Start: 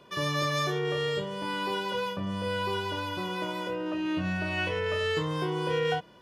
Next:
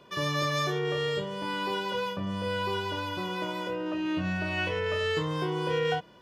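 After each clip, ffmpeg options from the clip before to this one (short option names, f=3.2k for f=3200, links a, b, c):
-af "equalizer=f=10k:t=o:w=0.26:g=-6"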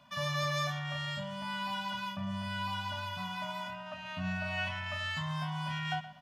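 -filter_complex "[0:a]afftfilt=real='re*(1-between(b*sr/4096,270,560))':imag='im*(1-between(b*sr/4096,270,560))':win_size=4096:overlap=0.75,asplit=2[a][b];[b]adelay=122,lowpass=f=4.3k:p=1,volume=-14dB,asplit=2[c][d];[d]adelay=122,lowpass=f=4.3k:p=1,volume=0.31,asplit=2[e][f];[f]adelay=122,lowpass=f=4.3k:p=1,volume=0.31[g];[a][c][e][g]amix=inputs=4:normalize=0,volume=-4dB"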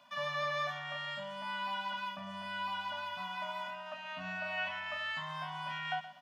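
-filter_complex "[0:a]highpass=340,acrossover=split=3500[a][b];[b]acompressor=threshold=-60dB:ratio=4:attack=1:release=60[c];[a][c]amix=inputs=2:normalize=0"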